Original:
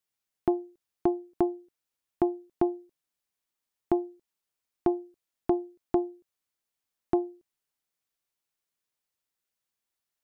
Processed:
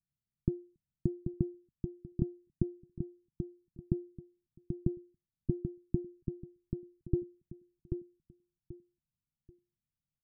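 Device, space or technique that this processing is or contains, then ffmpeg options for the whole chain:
the neighbour's flat through the wall: -filter_complex "[0:a]asettb=1/sr,asplit=3[s0][s1][s2];[s0]atrim=end=6.044[s3];[s1]atrim=start=6.04:end=7.23,asetpts=PTS-STARTPTS,afade=t=in:d=0.004:c=qsin,afade=t=out:st=1.186:d=0.004:c=qsin,aecho=1:1:2.4:0.72,atrim=end_sample=52479[s4];[s2]atrim=start=7.226[s5];[s3][s4]acrossfade=d=0.004:c1=hsin:c2=qsin[s6];[s6][s5]acrossfade=d=0.004:c1=qsin:c2=hsin,lowpass=f=190:w=0.5412,lowpass=f=190:w=1.3066,equalizer=f=150:t=o:w=0.55:g=4.5,asplit=2[s7][s8];[s8]adelay=785,lowpass=f=2000:p=1,volume=0.501,asplit=2[s9][s10];[s10]adelay=785,lowpass=f=2000:p=1,volume=0.26,asplit=2[s11][s12];[s12]adelay=785,lowpass=f=2000:p=1,volume=0.26[s13];[s7][s9][s11][s13]amix=inputs=4:normalize=0,volume=2.99"

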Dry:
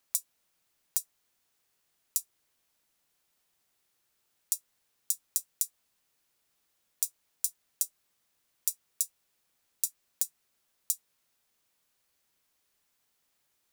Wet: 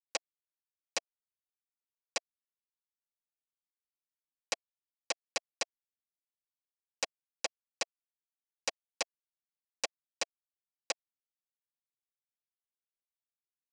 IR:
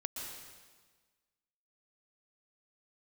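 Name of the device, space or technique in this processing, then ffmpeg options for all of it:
hand-held game console: -af "acrusher=bits=3:mix=0:aa=0.000001,highpass=410,equalizer=f=670:t=q:w=4:g=7,equalizer=f=1200:t=q:w=4:g=-7,equalizer=f=3700:t=q:w=4:g=-7,lowpass=f=5000:w=0.5412,lowpass=f=5000:w=1.3066,volume=2.11"

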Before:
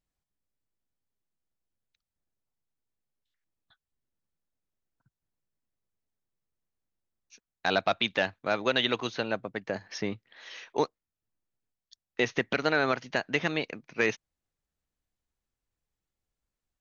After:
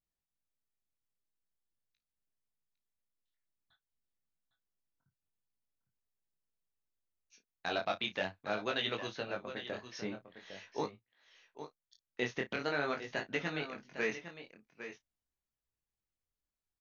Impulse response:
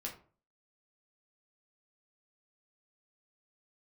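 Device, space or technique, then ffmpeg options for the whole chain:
double-tracked vocal: -filter_complex "[0:a]asplit=2[s0][s1];[s1]adelay=33,volume=0.211[s2];[s0][s2]amix=inputs=2:normalize=0,aecho=1:1:806:0.282,flanger=delay=18:depth=5.8:speed=0.45,volume=0.531"

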